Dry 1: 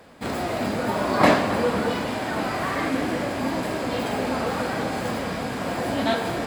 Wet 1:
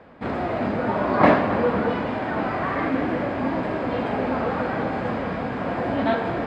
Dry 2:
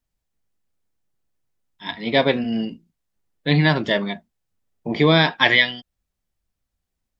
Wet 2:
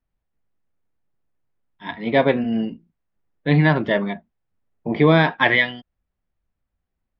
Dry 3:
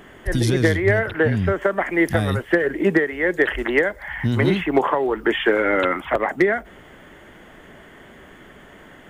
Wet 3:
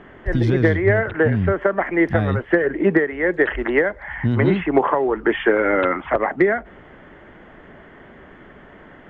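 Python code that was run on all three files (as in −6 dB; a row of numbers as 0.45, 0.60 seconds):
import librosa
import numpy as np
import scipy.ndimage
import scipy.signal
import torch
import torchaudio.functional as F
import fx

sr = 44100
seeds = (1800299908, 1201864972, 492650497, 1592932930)

y = scipy.signal.sosfilt(scipy.signal.butter(2, 2100.0, 'lowpass', fs=sr, output='sos'), x)
y = y * 10.0 ** (1.5 / 20.0)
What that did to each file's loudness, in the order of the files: +1.0, −0.5, +1.0 LU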